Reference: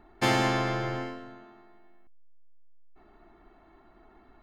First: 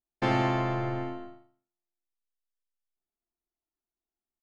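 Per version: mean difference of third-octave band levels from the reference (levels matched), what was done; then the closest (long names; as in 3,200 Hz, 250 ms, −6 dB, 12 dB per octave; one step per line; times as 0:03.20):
9.0 dB: stylus tracing distortion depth 0.028 ms
noise gate −44 dBFS, range −42 dB
head-to-tape spacing loss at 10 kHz 24 dB
repeating echo 83 ms, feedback 30%, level −7 dB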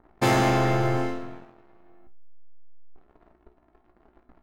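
4.0 dB: parametric band 3,200 Hz −8.5 dB 2.5 octaves
leveller curve on the samples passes 3
tuned comb filter 60 Hz, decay 0.24 s, harmonics all, mix 80%
one half of a high-frequency compander decoder only
level +4.5 dB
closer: second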